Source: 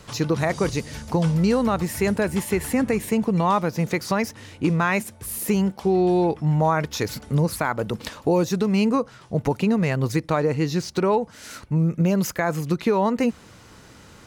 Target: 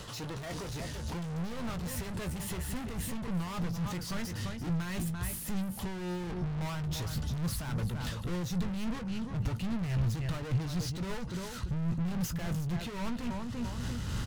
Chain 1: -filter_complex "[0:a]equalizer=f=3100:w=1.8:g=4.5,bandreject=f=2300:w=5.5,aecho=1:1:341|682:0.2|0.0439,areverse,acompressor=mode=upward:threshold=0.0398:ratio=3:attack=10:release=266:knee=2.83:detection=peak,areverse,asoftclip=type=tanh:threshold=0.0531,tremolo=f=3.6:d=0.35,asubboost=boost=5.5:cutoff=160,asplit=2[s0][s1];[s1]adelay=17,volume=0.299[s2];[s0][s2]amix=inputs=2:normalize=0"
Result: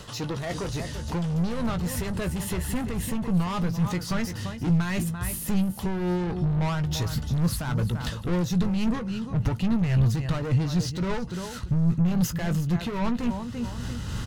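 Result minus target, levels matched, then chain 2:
saturation: distortion -5 dB
-filter_complex "[0:a]equalizer=f=3100:w=1.8:g=4.5,bandreject=f=2300:w=5.5,aecho=1:1:341|682:0.2|0.0439,areverse,acompressor=mode=upward:threshold=0.0398:ratio=3:attack=10:release=266:knee=2.83:detection=peak,areverse,asoftclip=type=tanh:threshold=0.015,tremolo=f=3.6:d=0.35,asubboost=boost=5.5:cutoff=160,asplit=2[s0][s1];[s1]adelay=17,volume=0.299[s2];[s0][s2]amix=inputs=2:normalize=0"

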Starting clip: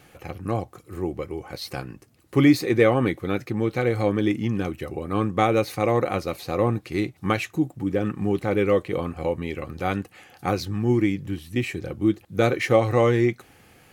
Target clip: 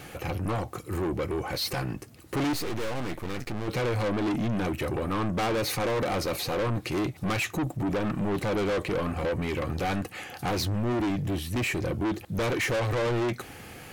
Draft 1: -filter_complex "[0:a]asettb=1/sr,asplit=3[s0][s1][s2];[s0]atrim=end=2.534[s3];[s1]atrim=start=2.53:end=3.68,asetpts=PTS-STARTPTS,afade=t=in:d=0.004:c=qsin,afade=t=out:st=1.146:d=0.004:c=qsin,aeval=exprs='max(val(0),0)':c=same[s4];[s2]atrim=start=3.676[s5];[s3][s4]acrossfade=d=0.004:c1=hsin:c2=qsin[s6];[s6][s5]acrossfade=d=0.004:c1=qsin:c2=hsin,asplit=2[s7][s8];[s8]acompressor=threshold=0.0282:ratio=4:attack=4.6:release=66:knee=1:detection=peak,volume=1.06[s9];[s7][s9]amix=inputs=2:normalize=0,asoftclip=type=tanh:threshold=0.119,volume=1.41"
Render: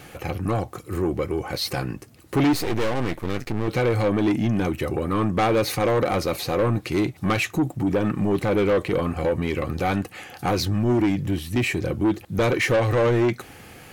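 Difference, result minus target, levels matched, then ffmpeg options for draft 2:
saturation: distortion -5 dB
-filter_complex "[0:a]asettb=1/sr,asplit=3[s0][s1][s2];[s0]atrim=end=2.534[s3];[s1]atrim=start=2.53:end=3.68,asetpts=PTS-STARTPTS,afade=t=in:d=0.004:c=qsin,afade=t=out:st=1.146:d=0.004:c=qsin,aeval=exprs='max(val(0),0)':c=same[s4];[s2]atrim=start=3.676[s5];[s3][s4]acrossfade=d=0.004:c1=hsin:c2=qsin[s6];[s6][s5]acrossfade=d=0.004:c1=qsin:c2=hsin,asplit=2[s7][s8];[s8]acompressor=threshold=0.0282:ratio=4:attack=4.6:release=66:knee=1:detection=peak,volume=1.06[s9];[s7][s9]amix=inputs=2:normalize=0,asoftclip=type=tanh:threshold=0.0398,volume=1.41"

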